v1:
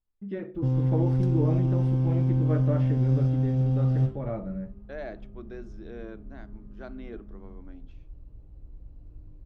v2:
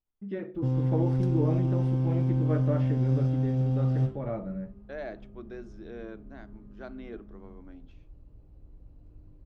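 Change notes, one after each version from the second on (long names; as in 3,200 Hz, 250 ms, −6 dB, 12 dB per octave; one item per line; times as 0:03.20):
master: add low-shelf EQ 94 Hz −7 dB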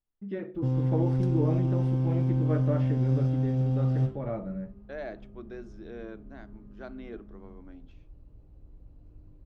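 nothing changed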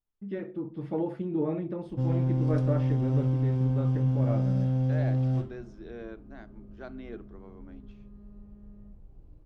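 background: entry +1.35 s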